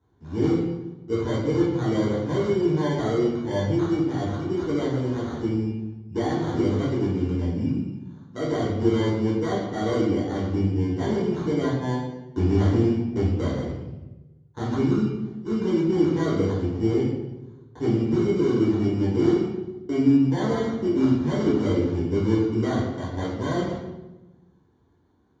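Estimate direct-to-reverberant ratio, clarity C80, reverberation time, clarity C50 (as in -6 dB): -6.5 dB, 4.0 dB, 1.1 s, 1.0 dB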